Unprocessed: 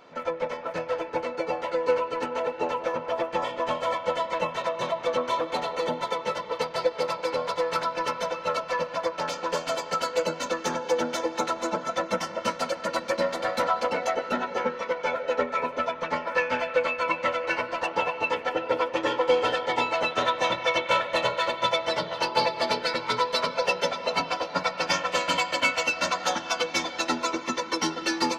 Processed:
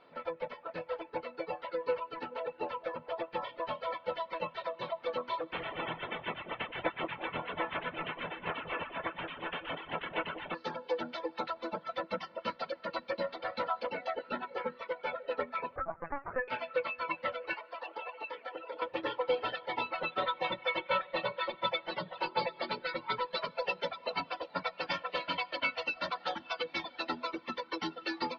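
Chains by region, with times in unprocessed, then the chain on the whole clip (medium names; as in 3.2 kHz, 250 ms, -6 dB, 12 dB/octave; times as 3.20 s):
5.51–10.54 s: spectral peaks clipped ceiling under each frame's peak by 21 dB + steep low-pass 3.3 kHz 72 dB/octave + two-band feedback delay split 910 Hz, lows 181 ms, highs 121 ms, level -5 dB
15.76–16.48 s: steep low-pass 1.9 kHz + LPC vocoder at 8 kHz pitch kept
17.53–18.82 s: high-pass 380 Hz + compression, threshold -27 dBFS
19.90–23.38 s: distance through air 100 m + comb 5.4 ms, depth 70%
whole clip: hum notches 50/100/150/200/250 Hz; reverb removal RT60 1.2 s; steep low-pass 4.6 kHz 48 dB/octave; trim -8 dB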